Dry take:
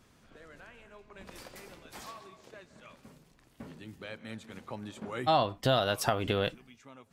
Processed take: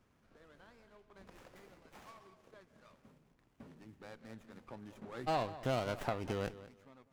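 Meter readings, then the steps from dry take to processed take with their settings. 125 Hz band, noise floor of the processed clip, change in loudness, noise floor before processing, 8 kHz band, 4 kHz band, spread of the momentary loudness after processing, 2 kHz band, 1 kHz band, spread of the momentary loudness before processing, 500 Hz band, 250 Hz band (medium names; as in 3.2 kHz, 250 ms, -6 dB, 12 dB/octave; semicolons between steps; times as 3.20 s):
-7.0 dB, -72 dBFS, -8.5 dB, -64 dBFS, -13.0 dB, -14.0 dB, 22 LU, -9.0 dB, -9.0 dB, 22 LU, -8.0 dB, -6.5 dB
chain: filtered feedback delay 199 ms, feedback 22%, low-pass 2.8 kHz, level -15 dB; sliding maximum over 9 samples; trim -8.5 dB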